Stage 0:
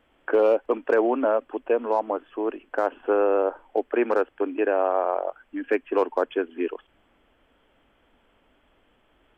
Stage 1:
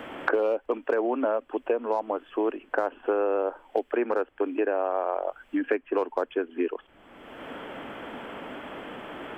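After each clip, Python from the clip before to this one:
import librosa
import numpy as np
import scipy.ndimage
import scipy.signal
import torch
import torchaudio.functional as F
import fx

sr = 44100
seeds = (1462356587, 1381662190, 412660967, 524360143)

y = fx.band_squash(x, sr, depth_pct=100)
y = F.gain(torch.from_numpy(y), -4.0).numpy()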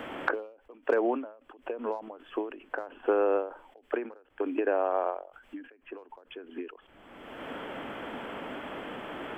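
y = fx.end_taper(x, sr, db_per_s=120.0)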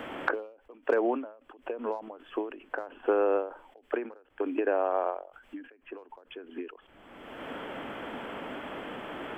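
y = x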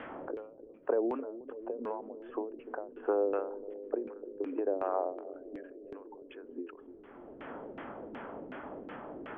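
y = fx.filter_lfo_lowpass(x, sr, shape='saw_down', hz=2.7, low_hz=300.0, high_hz=2400.0, q=1.3)
y = fx.echo_bbd(y, sr, ms=296, stages=1024, feedback_pct=84, wet_db=-13.0)
y = F.gain(torch.from_numpy(y), -5.5).numpy()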